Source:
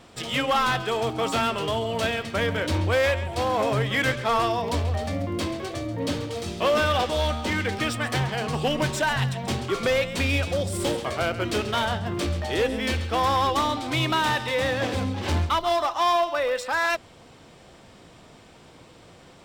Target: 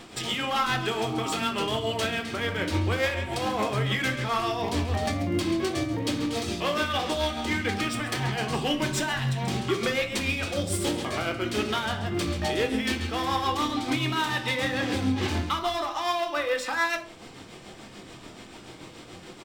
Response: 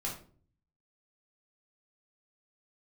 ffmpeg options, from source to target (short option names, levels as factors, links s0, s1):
-filter_complex "[0:a]firequalizer=gain_entry='entry(100,0);entry(310,9);entry(460,2);entry(2000,7)':delay=0.05:min_phase=1,alimiter=limit=0.119:level=0:latency=1:release=299,tremolo=f=6.9:d=0.51,asplit=2[s0][s1];[1:a]atrim=start_sample=2205[s2];[s1][s2]afir=irnorm=-1:irlink=0,volume=0.794[s3];[s0][s3]amix=inputs=2:normalize=0,volume=0.75"